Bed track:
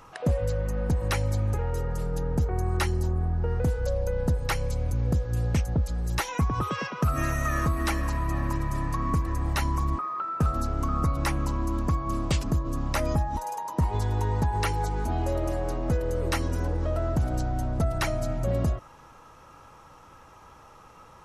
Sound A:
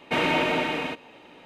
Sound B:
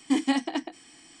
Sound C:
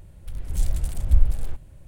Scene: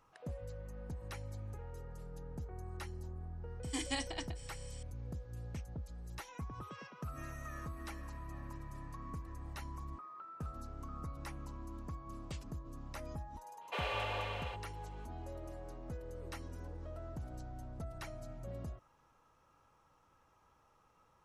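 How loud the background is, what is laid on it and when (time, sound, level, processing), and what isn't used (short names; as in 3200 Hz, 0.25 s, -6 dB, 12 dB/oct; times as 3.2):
bed track -19 dB
3.63 add B -11.5 dB + tilt +3.5 dB/oct
13.61 add A -15 dB + frequency shift +250 Hz
not used: C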